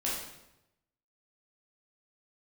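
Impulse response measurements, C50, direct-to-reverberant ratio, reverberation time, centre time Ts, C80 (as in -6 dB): 1.0 dB, -6.5 dB, 0.90 s, 58 ms, 5.0 dB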